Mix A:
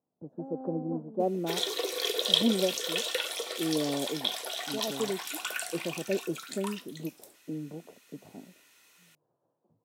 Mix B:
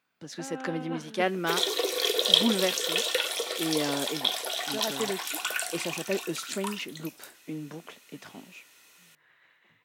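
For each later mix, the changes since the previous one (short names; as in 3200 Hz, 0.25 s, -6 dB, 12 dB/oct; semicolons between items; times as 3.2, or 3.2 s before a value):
speech: remove inverse Chebyshev low-pass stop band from 1900 Hz, stop band 50 dB; background +4.0 dB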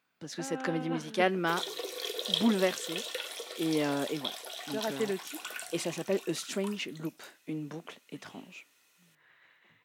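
background -10.0 dB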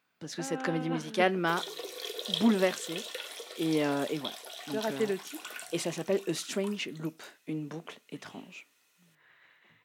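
background -3.5 dB; reverb: on, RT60 0.30 s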